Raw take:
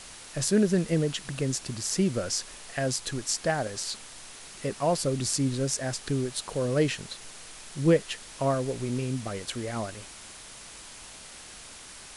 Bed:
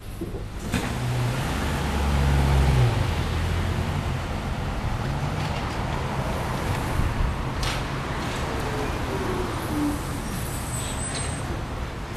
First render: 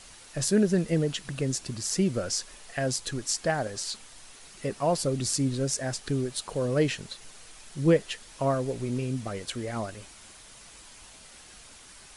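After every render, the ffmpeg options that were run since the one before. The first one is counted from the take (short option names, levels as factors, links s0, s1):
-af "afftdn=nr=6:nf=-46"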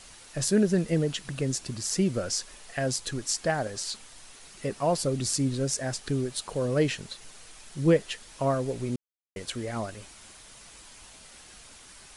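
-filter_complex "[0:a]asplit=3[s0][s1][s2];[s0]atrim=end=8.96,asetpts=PTS-STARTPTS,afade=t=out:st=8.956:d=0.004:c=hsin[s3];[s1]atrim=start=8.96:end=9.36,asetpts=PTS-STARTPTS,volume=0[s4];[s2]atrim=start=9.36,asetpts=PTS-STARTPTS,afade=t=in:d=0.004:c=hsin[s5];[s3][s4][s5]concat=n=3:v=0:a=1"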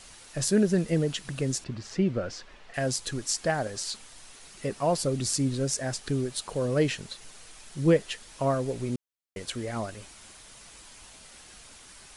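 -filter_complex "[0:a]asettb=1/sr,asplit=3[s0][s1][s2];[s0]atrim=end=1.644[s3];[s1]atrim=start=1.64:end=2.74,asetpts=PTS-STARTPTS,afade=t=in:d=0.004:c=qsin,afade=t=out:st=1.096:d=0.004:c=qsin,lowpass=2900[s4];[s2]atrim=start=2.736[s5];[s3][s4]acrossfade=d=0.004:c1=hsin:c2=qsin[s6];[s6][s5]acrossfade=d=0.004:c1=qsin:c2=hsin"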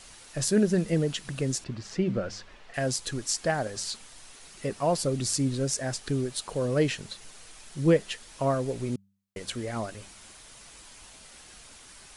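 -af "bandreject=f=98:t=h:w=4,bandreject=f=196:t=h:w=4"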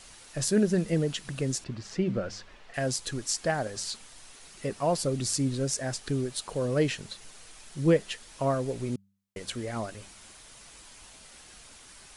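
-af "volume=0.891"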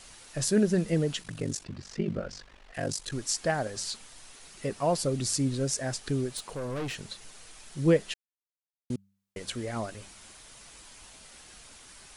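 -filter_complex "[0:a]asettb=1/sr,asplit=3[s0][s1][s2];[s0]atrim=end=1.224[s3];[s1]atrim=start=1.22:end=3.12,asetpts=PTS-STARTPTS,afade=t=in:d=0.004:c=qsin,afade=t=out:st=1.896:d=0.004:c=qsin,aeval=exprs='val(0)*sin(2*PI*24*n/s)':c=same[s4];[s2]atrim=start=3.116[s5];[s3][s4]acrossfade=d=0.004:c1=hsin:c2=qsin[s6];[s6][s5]acrossfade=d=0.004:c1=qsin:c2=hsin,asettb=1/sr,asplit=3[s7][s8][s9];[s7]atrim=end=6.374[s10];[s8]atrim=start=6.37:end=6.95,asetpts=PTS-STARTPTS,afade=t=in:d=0.004:c=qsin,afade=t=out:st=0.576:d=0.004:c=qsin,aeval=exprs='(tanh(35.5*val(0)+0.3)-tanh(0.3))/35.5':c=same[s11];[s9]atrim=start=6.946[s12];[s10][s11]acrossfade=d=0.004:c1=hsin:c2=qsin[s13];[s13][s12]acrossfade=d=0.004:c1=qsin:c2=hsin,asplit=3[s14][s15][s16];[s14]atrim=end=8.14,asetpts=PTS-STARTPTS,afade=t=out:st=8.136:d=0.004:c=hsin[s17];[s15]atrim=start=8.14:end=8.9,asetpts=PTS-STARTPTS,volume=0[s18];[s16]atrim=start=8.9,asetpts=PTS-STARTPTS,afade=t=in:d=0.004:c=hsin[s19];[s17][s18][s19]concat=n=3:v=0:a=1"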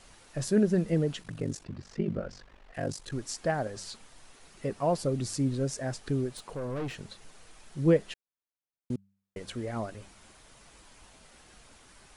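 -af "highshelf=f=2200:g=-9"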